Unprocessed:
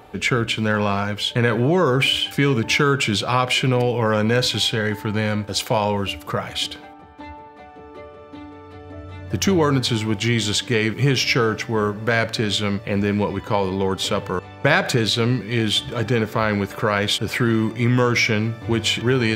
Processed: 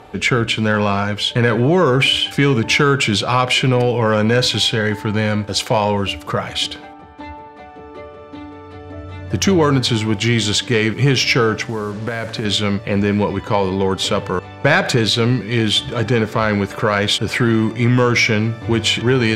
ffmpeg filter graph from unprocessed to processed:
-filter_complex "[0:a]asettb=1/sr,asplit=3[a][b][c];[a]atrim=end=11.654[d];[b]atrim=start=11.65:end=12.45,asetpts=PTS-STARTPTS,afade=t=in:d=0.004:c=qsin,afade=t=out:st=0.796:d=0.004:c=qsin,highshelf=f=3.7k:g=-11.5,acompressor=threshold=-21dB:ratio=12:attack=3.2:release=140:knee=1:detection=peak,acrusher=bits=6:mix=0:aa=0.5[e];[c]atrim=start=12.446[f];[d][e]acrossfade=d=0.004:c1=hsin:c2=qsin[g];[g][f]acrossfade=d=0.004:c1=qsin:c2=hsin,lowpass=10k,acontrast=34,volume=-1dB"

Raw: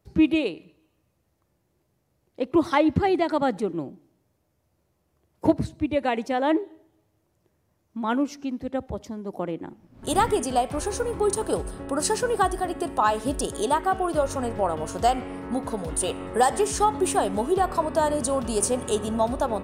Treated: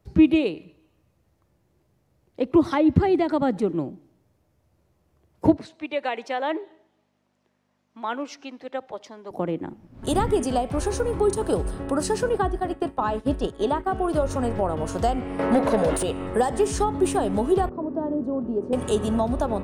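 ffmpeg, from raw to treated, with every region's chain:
-filter_complex "[0:a]asettb=1/sr,asplit=3[a][b][c];[a]atrim=end=5.574[d];[b]atrim=start=5.57:end=9.31,asetpts=PTS-STARTPTS,afade=t=in:d=0.004:c=qsin,afade=t=out:st=3.736:d=0.004:c=qsin,aemphasis=mode=production:type=75fm,aeval=exprs='val(0)+0.00282*(sin(2*PI*50*n/s)+sin(2*PI*2*50*n/s)/2+sin(2*PI*3*50*n/s)/3+sin(2*PI*4*50*n/s)/4+sin(2*PI*5*50*n/s)/5)':c=same,highpass=560,lowpass=3.5k[e];[c]atrim=start=9.306[f];[d][e]acrossfade=d=0.004:c1=hsin:c2=qsin[g];[g][f]acrossfade=d=0.004:c1=qsin:c2=hsin,asettb=1/sr,asplit=3[h][i][j];[h]atrim=end=12.294[k];[i]atrim=start=12.29:end=13.89,asetpts=PTS-STARTPTS,afade=t=in:d=0.004:c=qsin,afade=t=out:st=1.596:d=0.004:c=qsin,acrossover=split=4300[l][m];[m]acompressor=threshold=-48dB:ratio=4:attack=1:release=60[n];[l][n]amix=inputs=2:normalize=0,agate=range=-33dB:threshold=-27dB:ratio=3:release=100:detection=peak[o];[j]atrim=start=13.886[p];[k][o]acrossfade=d=0.004:c1=hsin:c2=qsin[q];[q][p]acrossfade=d=0.004:c1=qsin:c2=hsin,asettb=1/sr,asplit=3[r][s][t];[r]atrim=end=15.394[u];[s]atrim=start=15.39:end=16.03,asetpts=PTS-STARTPTS,afade=t=in:d=0.004:c=qsin,afade=t=out:st=0.636:d=0.004:c=qsin,equalizer=f=590:w=4.4:g=10.5,asplit=2[v][w];[w]highpass=f=720:p=1,volume=21dB,asoftclip=type=tanh:threshold=-10.5dB[x];[v][x]amix=inputs=2:normalize=0,lowpass=f=6.5k:p=1,volume=-6dB[y];[t]atrim=start=16.026[z];[u][y]acrossfade=d=0.004:c1=hsin:c2=qsin[aa];[aa][z]acrossfade=d=0.004:c1=qsin:c2=hsin,asettb=1/sr,asplit=3[ab][ac][ad];[ab]atrim=end=17.694[ae];[ac]atrim=start=17.69:end=18.73,asetpts=PTS-STARTPTS,afade=t=in:d=0.004:c=qsin,afade=t=out:st=1.036:d=0.004:c=qsin,bandpass=f=300:t=q:w=1.9,aemphasis=mode=reproduction:type=75fm[af];[ad]atrim=start=18.726[ag];[ae][af]acrossfade=d=0.004:c1=hsin:c2=qsin[ah];[ah][ag]acrossfade=d=0.004:c1=qsin:c2=hsin,lowshelf=f=150:g=4,acrossover=split=460[ai][aj];[aj]acompressor=threshold=-30dB:ratio=2.5[ak];[ai][ak]amix=inputs=2:normalize=0,highshelf=f=6.6k:g=-6,volume=3dB"

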